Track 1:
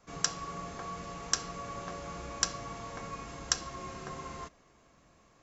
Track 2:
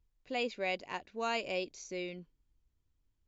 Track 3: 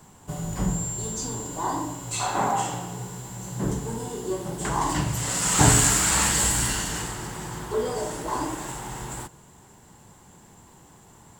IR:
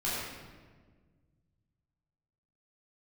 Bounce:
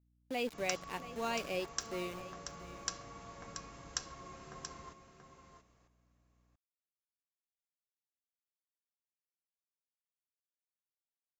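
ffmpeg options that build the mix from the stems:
-filter_complex "[0:a]adelay=450,volume=-9dB,asplit=2[link_01][link_02];[link_02]volume=-8.5dB[link_03];[1:a]highpass=frequency=160:width=0.5412,highpass=frequency=160:width=1.3066,lowshelf=frequency=370:gain=6,aeval=exprs='val(0)*gte(abs(val(0)),0.00944)':channel_layout=same,volume=-3.5dB,asplit=2[link_04][link_05];[link_05]volume=-15dB[link_06];[link_03][link_06]amix=inputs=2:normalize=0,aecho=0:1:681:1[link_07];[link_01][link_04][link_07]amix=inputs=3:normalize=0,aeval=exprs='val(0)+0.000251*(sin(2*PI*60*n/s)+sin(2*PI*2*60*n/s)/2+sin(2*PI*3*60*n/s)/3+sin(2*PI*4*60*n/s)/4+sin(2*PI*5*60*n/s)/5)':channel_layout=same"

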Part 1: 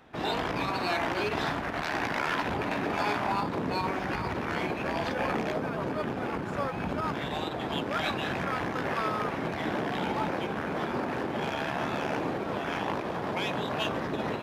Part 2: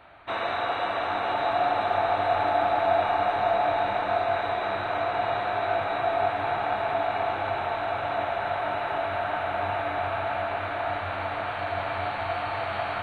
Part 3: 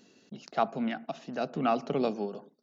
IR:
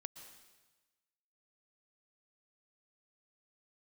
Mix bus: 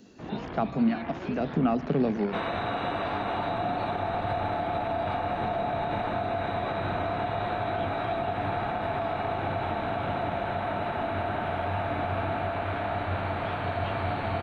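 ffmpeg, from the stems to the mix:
-filter_complex "[0:a]lowpass=frequency=3700:width=0.5412,lowpass=frequency=3700:width=1.3066,adelay=50,volume=-11.5dB[link_01];[1:a]alimiter=limit=-19dB:level=0:latency=1:release=59,adelay=2050,volume=-2.5dB[link_02];[2:a]acrossover=split=2900[link_03][link_04];[link_04]acompressor=threshold=-59dB:ratio=4:attack=1:release=60[link_05];[link_03][link_05]amix=inputs=2:normalize=0,volume=1dB[link_06];[link_01][link_02][link_06]amix=inputs=3:normalize=0,lowshelf=frequency=410:gain=10,acrossover=split=250|3000[link_07][link_08][link_09];[link_08]acompressor=threshold=-29dB:ratio=2[link_10];[link_07][link_10][link_09]amix=inputs=3:normalize=0"

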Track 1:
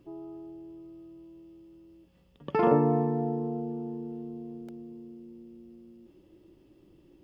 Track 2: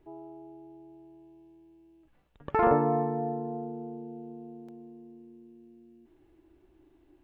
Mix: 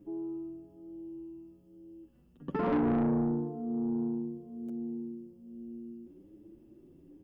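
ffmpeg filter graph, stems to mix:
ffmpeg -i stem1.wav -i stem2.wav -filter_complex "[0:a]equalizer=frequency=250:width_type=o:width=1:gain=8,equalizer=frequency=1000:width_type=o:width=1:gain=-6,equalizer=frequency=2000:width_type=o:width=1:gain=-7,equalizer=frequency=4000:width_type=o:width=1:gain=-12,asplit=2[link_01][link_02];[link_02]adelay=7.2,afreqshift=1.1[link_03];[link_01][link_03]amix=inputs=2:normalize=1,volume=1.5dB[link_04];[1:a]volume=-11.5dB[link_05];[link_04][link_05]amix=inputs=2:normalize=0,asoftclip=type=tanh:threshold=-24.5dB" out.wav

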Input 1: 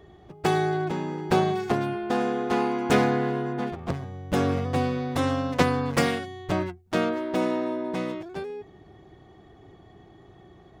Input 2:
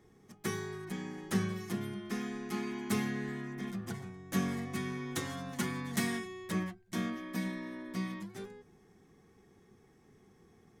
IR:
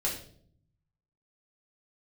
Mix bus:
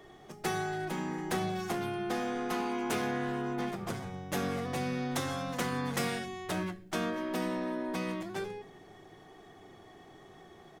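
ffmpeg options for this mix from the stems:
-filter_complex "[0:a]highpass=frequency=440:poles=1,acompressor=threshold=-37dB:ratio=2,asoftclip=type=tanh:threshold=-28dB,volume=2.5dB[link_01];[1:a]acompressor=threshold=-40dB:ratio=2,volume=-1,adelay=1.5,volume=0dB,asplit=2[link_02][link_03];[link_03]volume=-6dB[link_04];[2:a]atrim=start_sample=2205[link_05];[link_04][link_05]afir=irnorm=-1:irlink=0[link_06];[link_01][link_02][link_06]amix=inputs=3:normalize=0,lowshelf=frequency=490:gain=-3.5"

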